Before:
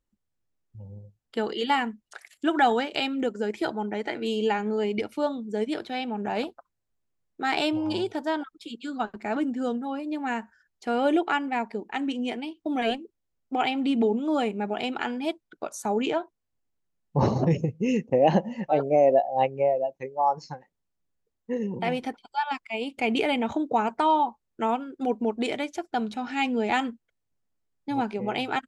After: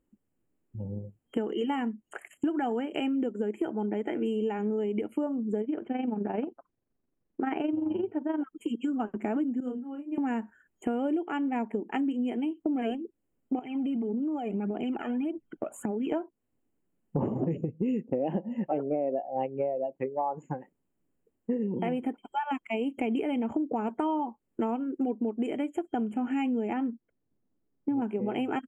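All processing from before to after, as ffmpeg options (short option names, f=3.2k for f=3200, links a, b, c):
-filter_complex "[0:a]asettb=1/sr,asplit=3[a][b][c];[a]atrim=end=5.614[d];[b]atrim=start=5.61:end=8.4,asetpts=PTS-STARTPTS,afade=t=in:d=0.004:c=qsin,afade=t=out:st=2.786:d=0.004:c=qsin,lowpass=2.5k,tremolo=f=23:d=0.621[e];[c]atrim=start=8.396[f];[d][e]acrossfade=d=0.004:c1=hsin:c2=qsin[g];[g][f]acrossfade=d=0.004:c1=qsin:c2=hsin,asettb=1/sr,asplit=3[h][i][j];[h]atrim=end=9.604[k];[i]atrim=start=9.6:end=10.18,asetpts=PTS-STARTPTS,afade=t=in:d=0.004:c=qsin,afade=t=out:st=0.576:d=0.004:c=qsin,equalizer=f=720:t=o:w=0.9:g=-6.5,agate=range=-33dB:threshold=-22dB:ratio=3:release=100:detection=peak,asplit=2[l][m];[m]adelay=28,volume=-4dB[n];[l][n]amix=inputs=2:normalize=0,atrim=end_sample=25578[o];[j]atrim=start=10.176[p];[k][o]acrossfade=d=0.004:c1=hsin:c2=qsin[q];[q][p]acrossfade=d=0.004:c1=qsin:c2=hsin,asettb=1/sr,asplit=3[r][s][t];[r]atrim=end=13.594[u];[s]atrim=start=13.59:end=16.12,asetpts=PTS-STARTPTS,afade=t=in:d=0.004:c=qsin,afade=t=out:st=2.526:d=0.004:c=qsin,lowpass=f=3.5k:p=1,aphaser=in_gain=1:out_gain=1:delay=1.7:decay=0.64:speed=1.7:type=triangular,acompressor=threshold=-34dB:ratio=20:attack=3.2:release=140:knee=1:detection=peak[v];[t]atrim=start=16.116[w];[u][v]acrossfade=d=0.004:c1=hsin:c2=qsin[x];[x][w]acrossfade=d=0.004:c1=qsin:c2=hsin,asettb=1/sr,asplit=3[y][z][aa];[y]atrim=end=26.734[ab];[z]atrim=start=26.73:end=28.02,asetpts=PTS-STARTPTS,afade=t=in:d=0.004:c=qsin,afade=t=out:st=1.286:d=0.004:c=qsin,lowpass=1.7k,equalizer=f=870:w=0.53:g=-3.5[ac];[aa]atrim=start=28.016[ad];[ab][ac]acrossfade=d=0.004:c1=hsin:c2=qsin[ae];[ae][ad]acrossfade=d=0.004:c1=qsin:c2=hsin,equalizer=f=290:t=o:w=2:g=14.5,afftfilt=real='re*(1-between(b*sr/4096,3200,6700))':imag='im*(1-between(b*sr/4096,3200,6700))':win_size=4096:overlap=0.75,acompressor=threshold=-28dB:ratio=6"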